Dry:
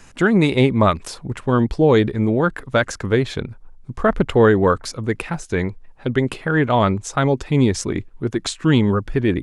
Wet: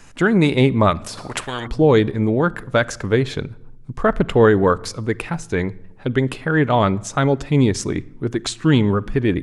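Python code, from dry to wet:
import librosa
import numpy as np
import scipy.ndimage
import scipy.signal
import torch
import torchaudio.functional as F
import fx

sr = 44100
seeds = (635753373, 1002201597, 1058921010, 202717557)

y = fx.room_shoebox(x, sr, seeds[0], volume_m3=3200.0, walls='furnished', distance_m=0.38)
y = fx.spectral_comp(y, sr, ratio=4.0, at=(1.17, 1.66), fade=0.02)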